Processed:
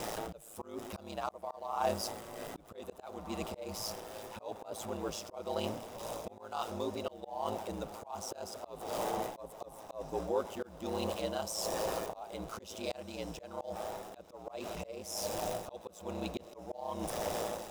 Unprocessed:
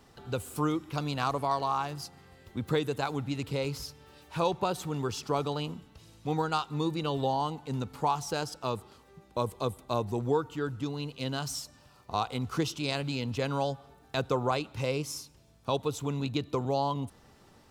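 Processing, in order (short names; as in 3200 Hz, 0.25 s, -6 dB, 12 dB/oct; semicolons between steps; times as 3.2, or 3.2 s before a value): zero-crossing step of -39.5 dBFS; ring modulator 55 Hz; tone controls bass -4 dB, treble +5 dB; notch 4300 Hz, Q 9.6; diffused feedback echo 1.734 s, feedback 51%, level -15 dB; tremolo 1.1 Hz, depth 72%; reverse; compressor 16:1, threshold -39 dBFS, peak gain reduction 15.5 dB; reverse; bell 630 Hz +13 dB 0.97 oct; auto swell 0.348 s; gain +4.5 dB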